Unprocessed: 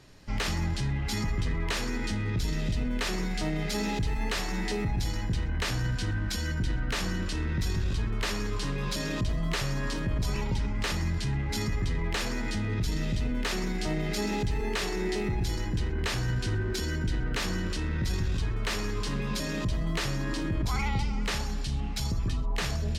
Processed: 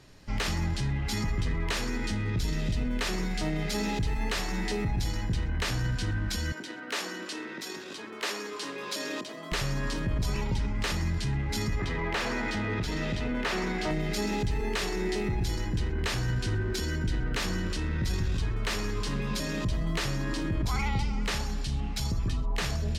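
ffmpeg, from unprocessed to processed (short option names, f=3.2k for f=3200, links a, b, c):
-filter_complex "[0:a]asettb=1/sr,asplit=3[a][b][c];[a]atrim=end=6.524[d];[b]atrim=start=6.52:end=9.52,asetpts=PTS-STARTPTS,afade=t=in:d=0.004:c=qsin,afade=t=out:st=2.996:d=0.004:c=qsin,highpass=f=280:w=0.5412,highpass=f=280:w=1.3066[e];[c]atrim=start=9.516[f];[d][e]acrossfade=d=0.004:c1=hsin:c2=qsin[g];[g][f]acrossfade=d=0.004:c1=qsin:c2=hsin,asettb=1/sr,asplit=3[h][i][j];[h]atrim=end=11.794[k];[i]atrim=start=11.79:end=13.91,asetpts=PTS-STARTPTS,afade=t=in:d=0.004:c=qsin,afade=t=out:st=2.116:d=0.004:c=qsin,asplit=2[l][m];[m]highpass=f=720:p=1,volume=16dB,asoftclip=type=tanh:threshold=-18dB[n];[l][n]amix=inputs=2:normalize=0,lowpass=f=1.6k:p=1,volume=-6dB[o];[j]atrim=start=13.906[p];[k][o]acrossfade=d=0.004:c1=hsin:c2=qsin[q];[q][p]acrossfade=d=0.004:c1=qsin:c2=hsin"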